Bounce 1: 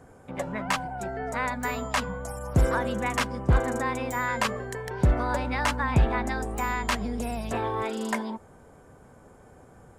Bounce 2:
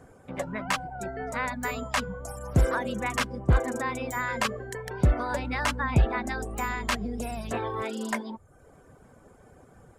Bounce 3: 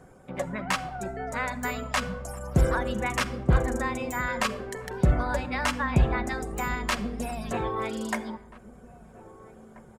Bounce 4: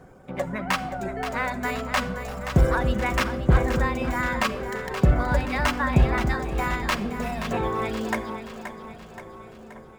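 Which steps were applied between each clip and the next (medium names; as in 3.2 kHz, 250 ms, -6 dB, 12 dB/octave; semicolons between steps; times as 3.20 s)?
reverb removal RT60 0.64 s; peaking EQ 890 Hz -3.5 dB 0.31 oct
echo from a far wall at 280 m, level -18 dB; simulated room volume 3700 m³, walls furnished, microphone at 1 m
median filter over 5 samples; two-band feedback delay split 320 Hz, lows 278 ms, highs 526 ms, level -9.5 dB; trim +3 dB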